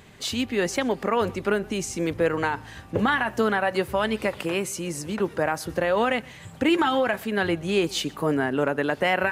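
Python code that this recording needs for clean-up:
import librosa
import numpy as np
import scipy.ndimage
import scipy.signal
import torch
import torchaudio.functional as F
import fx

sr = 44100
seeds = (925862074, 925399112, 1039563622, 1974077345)

y = fx.fix_declick_ar(x, sr, threshold=6.5)
y = fx.fix_echo_inverse(y, sr, delay_ms=124, level_db=-24.0)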